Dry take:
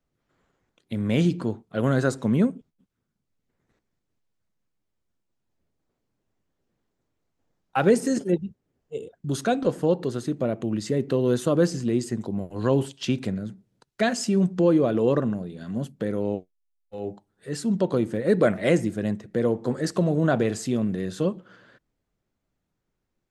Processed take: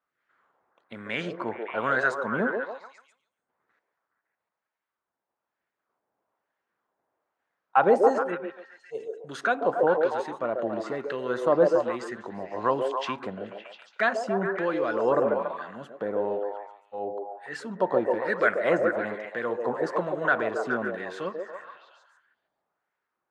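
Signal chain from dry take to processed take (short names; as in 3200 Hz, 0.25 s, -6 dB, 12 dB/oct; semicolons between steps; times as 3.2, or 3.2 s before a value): LFO band-pass sine 1.1 Hz 810–1700 Hz; delay with a stepping band-pass 0.14 s, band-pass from 480 Hz, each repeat 0.7 oct, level -0.5 dB; gain +9 dB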